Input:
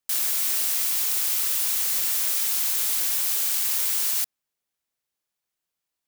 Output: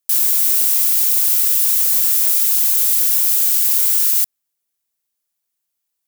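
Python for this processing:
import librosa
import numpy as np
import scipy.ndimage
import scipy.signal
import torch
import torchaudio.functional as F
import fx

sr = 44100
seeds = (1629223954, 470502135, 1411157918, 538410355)

y = fx.high_shelf(x, sr, hz=6000.0, db=12.0)
y = y * librosa.db_to_amplitude(-1.5)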